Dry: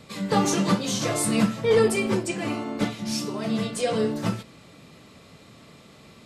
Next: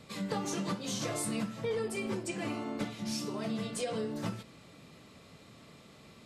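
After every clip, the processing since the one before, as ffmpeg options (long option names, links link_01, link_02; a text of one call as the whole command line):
ffmpeg -i in.wav -af "acompressor=threshold=-26dB:ratio=6,volume=-5.5dB" out.wav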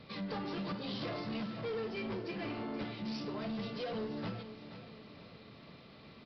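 ffmpeg -i in.wav -af "aresample=11025,asoftclip=type=tanh:threshold=-34.5dB,aresample=44100,aecho=1:1:477|954|1431|1908|2385:0.251|0.116|0.0532|0.0244|0.0112" out.wav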